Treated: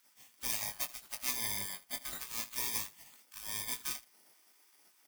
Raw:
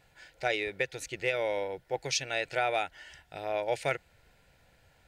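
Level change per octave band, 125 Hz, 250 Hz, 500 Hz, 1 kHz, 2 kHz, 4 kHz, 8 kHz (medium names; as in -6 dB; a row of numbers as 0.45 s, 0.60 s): -11.0 dB, -9.5 dB, -25.0 dB, -14.0 dB, -11.5 dB, -3.0 dB, +4.0 dB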